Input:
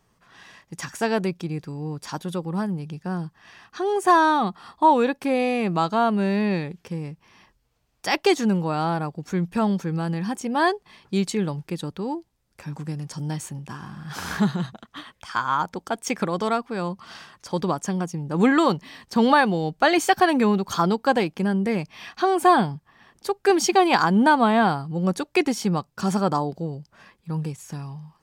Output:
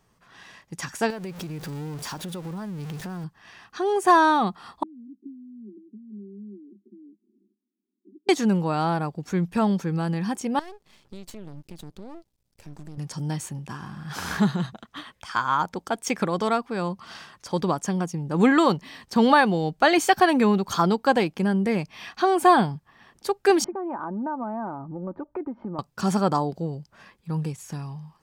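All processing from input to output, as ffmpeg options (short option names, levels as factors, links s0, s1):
-filter_complex "[0:a]asettb=1/sr,asplit=3[s0][s1][s2];[s0]atrim=end=1.104[s3];[s1]atrim=start=1.1:end=3.24,asetpts=PTS-STARTPTS,afade=t=in:d=0.004:c=qsin,afade=t=out:st=2.136:d=0.004:c=qsin,aeval=exprs='val(0)+0.5*0.0237*sgn(val(0))':c=same,acompressor=threshold=0.0282:ratio=6:attack=3.2:release=140:knee=1:detection=peak[s4];[s2]atrim=start=3.236[s5];[s3][s4]acrossfade=d=0.004:c1=hsin:c2=qsin[s6];[s6][s5]acrossfade=d=0.004:c1=qsin:c2=hsin,asettb=1/sr,asplit=3[s7][s8][s9];[s7]atrim=end=4.834[s10];[s8]atrim=start=4.83:end=8.29,asetpts=PTS-STARTPTS,afade=t=in:d=0.004:c=qsin,afade=t=out:st=3.456:d=0.004:c=qsin,acompressor=threshold=0.0141:ratio=5:attack=3.2:release=140:knee=1:detection=peak,asuperpass=centerf=280:order=20:qfactor=1.4[s11];[s9]atrim=start=8.286[s12];[s10][s11]acrossfade=d=0.004:c1=hsin:c2=qsin[s13];[s13][s12]acrossfade=d=0.004:c1=qsin:c2=hsin,asettb=1/sr,asplit=3[s14][s15][s16];[s14]atrim=end=10.594[s17];[s15]atrim=start=10.59:end=12.98,asetpts=PTS-STARTPTS,afade=t=in:d=0.004:c=qsin,afade=t=out:st=2.386:d=0.004:c=qsin,equalizer=f=1300:w=0.82:g=-9,acompressor=threshold=0.02:ratio=8:attack=3.2:release=140:knee=1:detection=peak,aeval=exprs='max(val(0),0)':c=same[s18];[s16]atrim=start=12.976[s19];[s17][s18]acrossfade=d=0.004:c1=hsin:c2=qsin[s20];[s20][s19]acrossfade=d=0.004:c1=qsin:c2=hsin,asettb=1/sr,asplit=3[s21][s22][s23];[s21]atrim=end=23.644[s24];[s22]atrim=start=23.64:end=25.79,asetpts=PTS-STARTPTS,afade=t=in:d=0.004:c=qsin,afade=t=out:st=2.146:d=0.004:c=qsin,lowpass=f=1200:w=0.5412,lowpass=f=1200:w=1.3066,aecho=1:1:3.3:0.55,atrim=end_sample=94815,acompressor=threshold=0.0251:ratio=3:attack=3.2:release=140:knee=1:detection=peak[s25];[s23]atrim=start=25.786[s26];[s24][s25]acrossfade=d=0.004:c1=hsin:c2=qsin[s27];[s27][s26]acrossfade=d=0.004:c1=qsin:c2=hsin"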